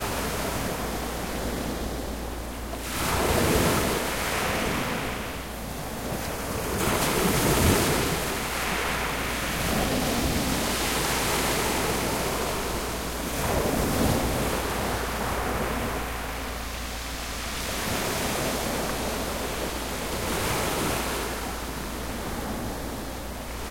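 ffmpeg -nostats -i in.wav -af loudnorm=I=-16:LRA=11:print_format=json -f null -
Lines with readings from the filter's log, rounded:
"input_i" : "-27.4",
"input_tp" : "-8.6",
"input_lra" : "6.2",
"input_thresh" : "-37.4",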